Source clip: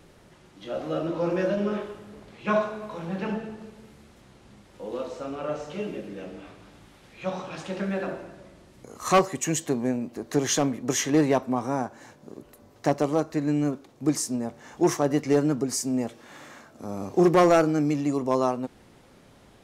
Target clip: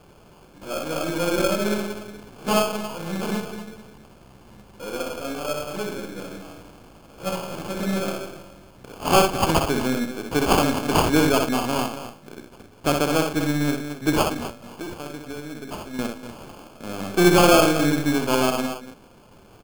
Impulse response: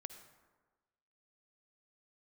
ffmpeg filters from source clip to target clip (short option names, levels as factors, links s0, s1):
-filter_complex "[0:a]aeval=exprs='if(lt(val(0),0),0.708*val(0),val(0))':c=same,highshelf=f=4300:g=11,asettb=1/sr,asplit=3[s0][s1][s2];[s0]atrim=end=14.234[s3];[s1]atrim=start=14.23:end=15.99,asetpts=PTS-STARTPTS,afade=t=in:d=0.004:c=qsin,afade=t=out:st=1.756:d=0.004:c=qsin,acompressor=threshold=0.0178:ratio=10[s4];[s2]atrim=start=15.986[s5];[s3][s4]acrossfade=d=0.004:c1=hsin:c2=qsin[s6];[s6][s5]acrossfade=d=0.004:c1=qsin:c2=hsin,aecho=1:1:62|107|198|241|275:0.596|0.158|0.112|0.251|0.15,acrusher=samples=23:mix=1:aa=0.000001,volume=1.33"